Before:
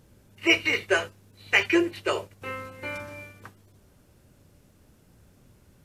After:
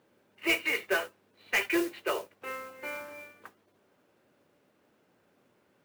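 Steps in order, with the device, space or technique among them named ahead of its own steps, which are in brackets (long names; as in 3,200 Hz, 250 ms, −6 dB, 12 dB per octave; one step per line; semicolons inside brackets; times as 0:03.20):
carbon microphone (band-pass filter 340–2,900 Hz; soft clipping −16 dBFS, distortion −14 dB; noise that follows the level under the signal 15 dB)
level −2.5 dB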